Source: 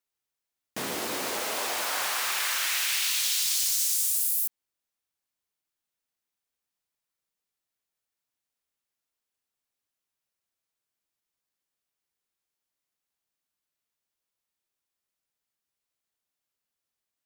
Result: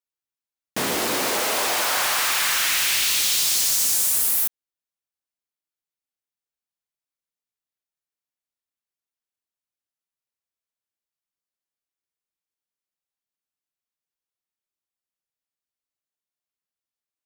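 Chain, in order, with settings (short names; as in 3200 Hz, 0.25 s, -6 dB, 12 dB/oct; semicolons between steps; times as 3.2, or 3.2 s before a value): sample leveller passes 3; gain -1.5 dB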